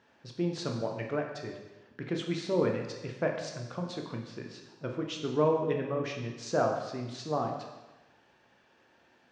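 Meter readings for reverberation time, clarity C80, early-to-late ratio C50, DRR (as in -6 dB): 1.1 s, 7.0 dB, 5.0 dB, 1.5 dB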